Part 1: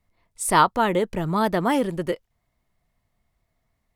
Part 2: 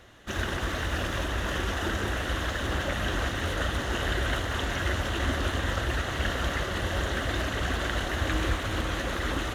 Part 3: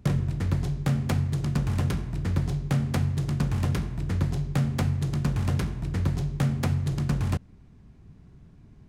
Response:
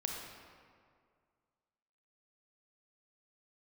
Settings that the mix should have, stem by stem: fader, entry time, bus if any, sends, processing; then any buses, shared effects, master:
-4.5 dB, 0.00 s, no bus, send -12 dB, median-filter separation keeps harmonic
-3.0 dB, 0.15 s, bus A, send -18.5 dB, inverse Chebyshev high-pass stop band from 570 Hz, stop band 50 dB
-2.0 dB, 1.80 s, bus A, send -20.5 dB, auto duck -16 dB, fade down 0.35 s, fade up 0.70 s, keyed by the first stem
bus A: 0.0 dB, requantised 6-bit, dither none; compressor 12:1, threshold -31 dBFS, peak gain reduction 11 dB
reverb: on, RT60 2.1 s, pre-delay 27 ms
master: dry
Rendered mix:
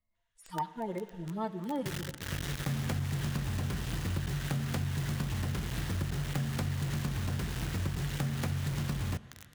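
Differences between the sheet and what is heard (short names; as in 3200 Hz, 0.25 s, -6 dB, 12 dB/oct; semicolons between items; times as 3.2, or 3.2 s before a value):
stem 1 -4.5 dB -> -14.0 dB; stem 2 -3.0 dB -> -11.0 dB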